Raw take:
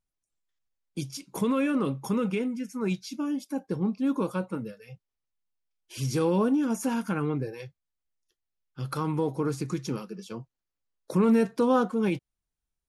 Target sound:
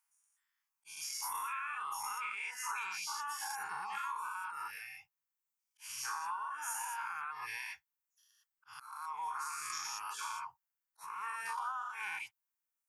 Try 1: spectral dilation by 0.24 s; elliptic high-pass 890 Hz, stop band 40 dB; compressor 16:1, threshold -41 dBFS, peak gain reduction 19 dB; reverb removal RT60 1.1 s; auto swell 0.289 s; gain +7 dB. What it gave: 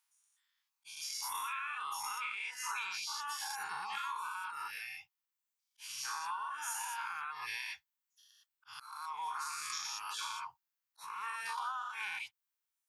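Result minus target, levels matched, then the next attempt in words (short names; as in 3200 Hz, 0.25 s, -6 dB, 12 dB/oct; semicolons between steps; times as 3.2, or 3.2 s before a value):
4000 Hz band +4.0 dB
spectral dilation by 0.24 s; elliptic high-pass 890 Hz, stop band 40 dB; bell 3800 Hz -13 dB 0.76 oct; compressor 16:1, threshold -41 dBFS, peak gain reduction 18.5 dB; reverb removal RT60 1.1 s; auto swell 0.289 s; gain +7 dB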